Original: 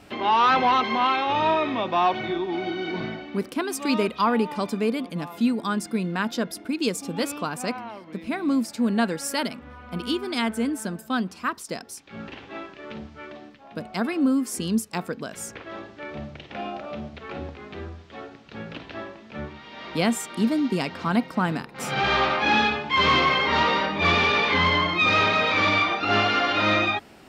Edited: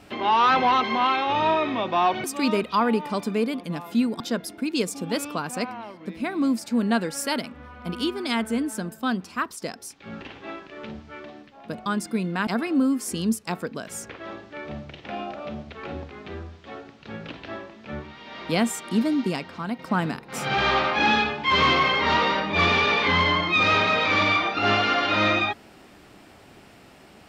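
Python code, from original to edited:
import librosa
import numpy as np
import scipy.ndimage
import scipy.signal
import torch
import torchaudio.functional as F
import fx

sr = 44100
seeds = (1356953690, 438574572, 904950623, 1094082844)

y = fx.edit(x, sr, fx.cut(start_s=2.24, length_s=1.46),
    fx.move(start_s=5.66, length_s=0.61, to_s=13.93),
    fx.fade_out_to(start_s=20.7, length_s=0.55, curve='qua', floor_db=-8.0), tone=tone)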